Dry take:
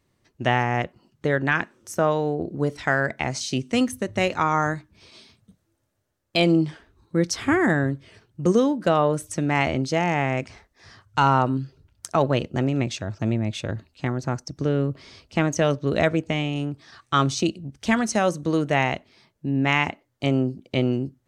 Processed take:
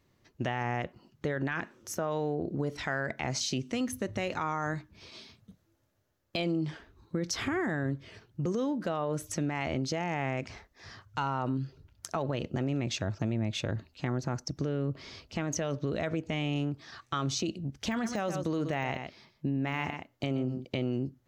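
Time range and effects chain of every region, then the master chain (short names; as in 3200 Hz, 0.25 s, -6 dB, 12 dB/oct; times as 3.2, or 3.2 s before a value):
17.91–20.65 de-esser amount 70% + echo 0.123 s -14 dB
whole clip: bell 8800 Hz -14.5 dB 0.2 oct; limiter -19 dBFS; compressor 2.5:1, threshold -29 dBFS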